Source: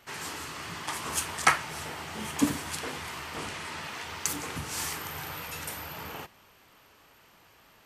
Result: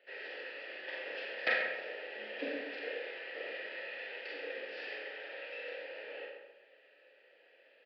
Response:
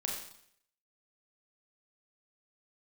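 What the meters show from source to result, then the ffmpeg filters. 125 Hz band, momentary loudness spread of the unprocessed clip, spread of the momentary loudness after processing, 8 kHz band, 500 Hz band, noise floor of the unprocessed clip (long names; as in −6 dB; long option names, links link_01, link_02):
below −30 dB, 12 LU, 11 LU, below −40 dB, +1.5 dB, −59 dBFS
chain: -filter_complex "[0:a]highpass=frequency=290:width=0.5412,highpass=frequency=290:width=1.3066,aeval=exprs='(mod(2.37*val(0)+1,2)-1)/2.37':channel_layout=same,asplit=3[link_01][link_02][link_03];[link_01]bandpass=frequency=530:width_type=q:width=8,volume=0dB[link_04];[link_02]bandpass=frequency=1840:width_type=q:width=8,volume=-6dB[link_05];[link_03]bandpass=frequency=2480:width_type=q:width=8,volume=-9dB[link_06];[link_04][link_05][link_06]amix=inputs=3:normalize=0,asplit=2[link_07][link_08];[link_08]adelay=133,lowpass=frequency=2100:poles=1,volume=-5.5dB,asplit=2[link_09][link_10];[link_10]adelay=133,lowpass=frequency=2100:poles=1,volume=0.41,asplit=2[link_11][link_12];[link_12]adelay=133,lowpass=frequency=2100:poles=1,volume=0.41,asplit=2[link_13][link_14];[link_14]adelay=133,lowpass=frequency=2100:poles=1,volume=0.41,asplit=2[link_15][link_16];[link_16]adelay=133,lowpass=frequency=2100:poles=1,volume=0.41[link_17];[link_07][link_09][link_11][link_13][link_15][link_17]amix=inputs=6:normalize=0[link_18];[1:a]atrim=start_sample=2205,afade=type=out:start_time=0.19:duration=0.01,atrim=end_sample=8820[link_19];[link_18][link_19]afir=irnorm=-1:irlink=0,aresample=11025,aresample=44100,volume=4.5dB"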